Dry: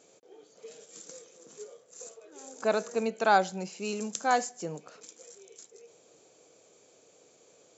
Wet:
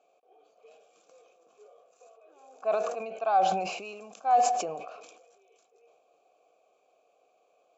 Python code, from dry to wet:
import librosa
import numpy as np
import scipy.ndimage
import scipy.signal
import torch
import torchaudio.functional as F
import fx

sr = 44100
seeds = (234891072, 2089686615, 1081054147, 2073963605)

p1 = fx.rider(x, sr, range_db=10, speed_s=0.5)
p2 = x + (p1 * 10.0 ** (-2.0 / 20.0))
p3 = fx.vowel_filter(p2, sr, vowel='a')
y = fx.sustainer(p3, sr, db_per_s=46.0)